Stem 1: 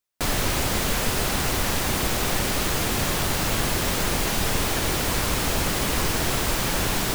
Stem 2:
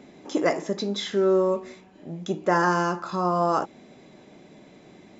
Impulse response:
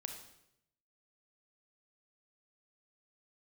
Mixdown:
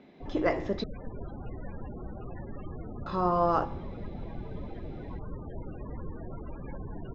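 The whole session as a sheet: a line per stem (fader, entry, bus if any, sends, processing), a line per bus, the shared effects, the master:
−13.0 dB, 0.00 s, no send, echo send −4 dB, spectral peaks only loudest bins 16
−2.0 dB, 0.00 s, muted 0:00.84–0:03.06, no send, no echo send, automatic gain control gain up to 4 dB; tuned comb filter 52 Hz, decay 0.79 s, harmonics all, mix 50%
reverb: not used
echo: single-tap delay 749 ms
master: low-pass filter 4,200 Hz 24 dB per octave

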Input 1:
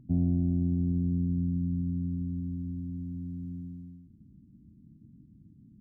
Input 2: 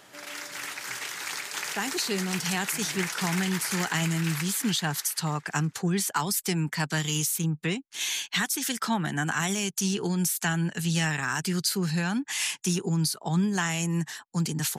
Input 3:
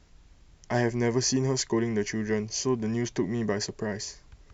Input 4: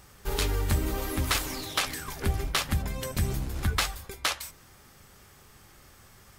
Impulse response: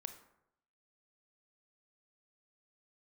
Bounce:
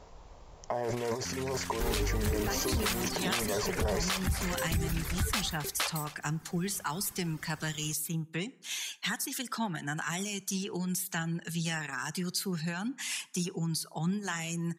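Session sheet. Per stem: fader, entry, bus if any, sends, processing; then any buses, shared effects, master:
−17.0 dB, 1.15 s, no send, no echo send, no processing
−8.5 dB, 0.70 s, send −5 dB, no echo send, reverb reduction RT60 0.57 s
−3.0 dB, 0.00 s, no send, no echo send, compressor whose output falls as the input rises −34 dBFS, ratio −1; flat-topped bell 700 Hz +13 dB
0.0 dB, 1.55 s, send −6 dB, echo send −20 dB, reverb reduction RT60 1.2 s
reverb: on, RT60 0.80 s, pre-delay 23 ms
echo: single-tap delay 269 ms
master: brickwall limiter −21.5 dBFS, peak gain reduction 10 dB

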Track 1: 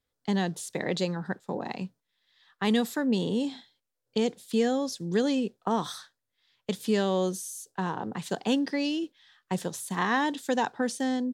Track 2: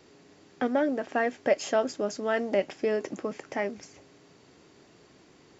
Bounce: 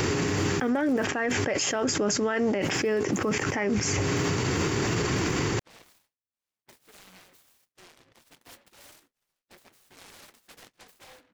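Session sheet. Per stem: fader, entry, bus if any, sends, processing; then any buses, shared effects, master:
−12.0 dB, 0.00 s, no send, flanger 0.26 Hz, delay 6 ms, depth 6.2 ms, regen −45%; gate on every frequency bin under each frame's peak −10 dB weak; short delay modulated by noise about 1,300 Hz, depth 0.29 ms
+2.5 dB, 0.00 s, no send, graphic EQ with 15 bands 100 Hz +9 dB, 250 Hz −4 dB, 630 Hz −9 dB, 4,000 Hz −7 dB; envelope flattener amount 100%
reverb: not used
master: brickwall limiter −17.5 dBFS, peak gain reduction 10.5 dB

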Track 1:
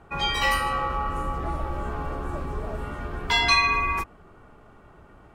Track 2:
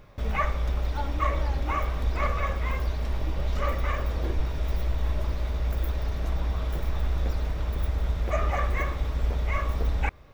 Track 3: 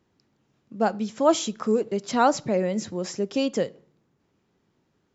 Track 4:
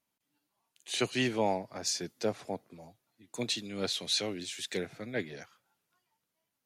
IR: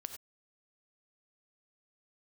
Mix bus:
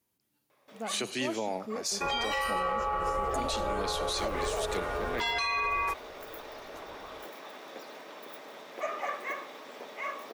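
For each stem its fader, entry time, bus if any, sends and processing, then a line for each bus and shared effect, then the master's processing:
+2.0 dB, 1.90 s, no send, low shelf with overshoot 350 Hz −9 dB, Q 3; downward compressor 1.5 to 1, threshold −30 dBFS, peak gain reduction 5.5 dB
−3.5 dB, 0.50 s, no send, Bessel high-pass filter 410 Hz, order 8; notch filter 1,400 Hz, Q 25; automatic ducking −13 dB, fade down 1.15 s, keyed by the third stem
−15.5 dB, 0.00 s, no send, no processing
−3.0 dB, 0.00 s, send −7 dB, high-pass filter 170 Hz; high-shelf EQ 8,000 Hz +9.5 dB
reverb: on, pre-delay 3 ms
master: brickwall limiter −22 dBFS, peak gain reduction 10.5 dB

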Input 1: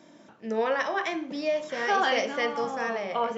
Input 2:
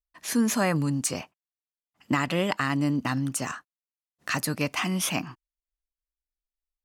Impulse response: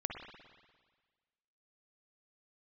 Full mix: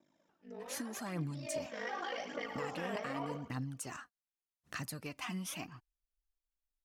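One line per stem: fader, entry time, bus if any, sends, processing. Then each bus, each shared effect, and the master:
0:01.18 −19.5 dB → 0:01.55 −10 dB, 0.00 s, no send, echo send −8.5 dB, brickwall limiter −21 dBFS, peak gain reduction 8.5 dB; ring modulation 26 Hz
−9.0 dB, 0.45 s, no send, no echo send, low-shelf EQ 110 Hz +8.5 dB; downward compressor 4 to 1, threshold −32 dBFS, peak gain reduction 12.5 dB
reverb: not used
echo: repeating echo 108 ms, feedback 40%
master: phase shifter 0.84 Hz, delay 4.9 ms, feedback 51%

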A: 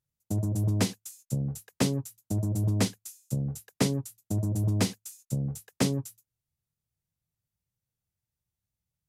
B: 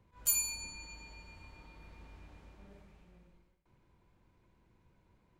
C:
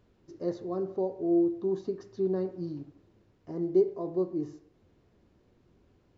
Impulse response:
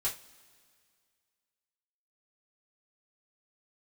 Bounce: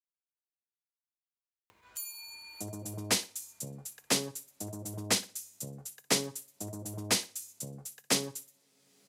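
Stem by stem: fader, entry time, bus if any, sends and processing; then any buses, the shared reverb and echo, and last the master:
+2.5 dB, 2.30 s, send −22.5 dB, echo send −16.5 dB, multiband upward and downward expander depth 40%
−17.0 dB, 1.70 s, send −3 dB, no echo send, no processing
muted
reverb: on, pre-delay 3 ms
echo: repeating echo 60 ms, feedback 31%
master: upward compression, threshold −34 dBFS; high-pass filter 1,100 Hz 6 dB per octave

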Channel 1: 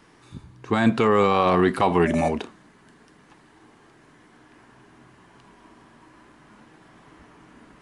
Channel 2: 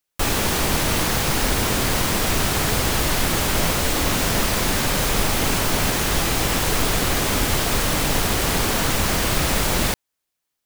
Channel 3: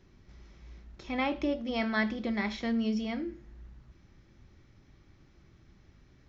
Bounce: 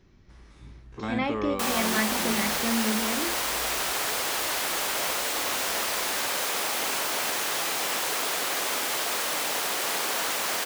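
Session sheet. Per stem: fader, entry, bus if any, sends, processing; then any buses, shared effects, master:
−2.0 dB, 0.30 s, no send, spectrum averaged block by block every 50 ms; automatic ducking −14 dB, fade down 1.95 s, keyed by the third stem
−5.0 dB, 1.40 s, no send, high-pass filter 520 Hz 12 dB per octave
+1.5 dB, 0.00 s, no send, no processing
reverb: not used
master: no processing

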